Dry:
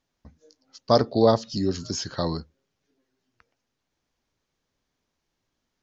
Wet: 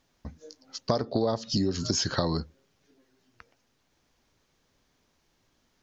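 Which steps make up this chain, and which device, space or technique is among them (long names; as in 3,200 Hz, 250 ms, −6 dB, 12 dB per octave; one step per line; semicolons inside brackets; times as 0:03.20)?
serial compression, peaks first (downward compressor 4 to 1, threshold −27 dBFS, peak gain reduction 12.5 dB; downward compressor 2.5 to 1, threshold −33 dBFS, peak gain reduction 7 dB)
level +8.5 dB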